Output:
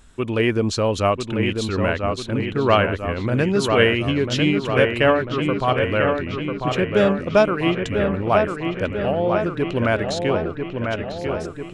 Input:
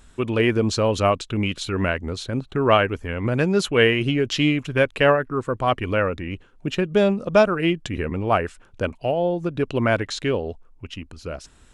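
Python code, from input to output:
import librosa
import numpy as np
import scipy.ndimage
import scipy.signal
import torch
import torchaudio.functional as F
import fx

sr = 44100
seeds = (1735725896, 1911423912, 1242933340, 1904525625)

y = fx.echo_wet_lowpass(x, sr, ms=995, feedback_pct=60, hz=3000.0, wet_db=-5)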